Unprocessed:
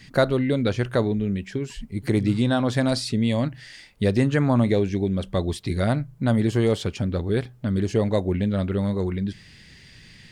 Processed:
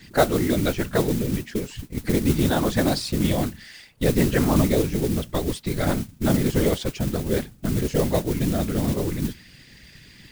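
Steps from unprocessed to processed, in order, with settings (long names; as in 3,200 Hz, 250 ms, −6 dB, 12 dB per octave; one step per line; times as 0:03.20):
random phases in short frames
noise that follows the level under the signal 15 dB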